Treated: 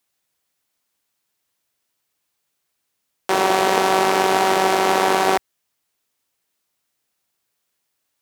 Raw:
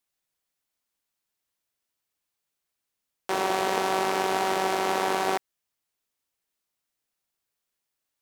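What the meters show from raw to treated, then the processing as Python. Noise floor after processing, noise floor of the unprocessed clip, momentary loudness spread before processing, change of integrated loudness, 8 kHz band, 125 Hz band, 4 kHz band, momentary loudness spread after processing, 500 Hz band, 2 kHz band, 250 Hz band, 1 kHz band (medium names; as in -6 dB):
-75 dBFS, -84 dBFS, 5 LU, +8.5 dB, +8.5 dB, +8.5 dB, +8.5 dB, 5 LU, +8.5 dB, +8.5 dB, +8.5 dB, +8.5 dB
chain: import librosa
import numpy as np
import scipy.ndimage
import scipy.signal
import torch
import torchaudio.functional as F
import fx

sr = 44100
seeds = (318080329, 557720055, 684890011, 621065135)

y = scipy.signal.sosfilt(scipy.signal.butter(2, 59.0, 'highpass', fs=sr, output='sos'), x)
y = y * librosa.db_to_amplitude(8.5)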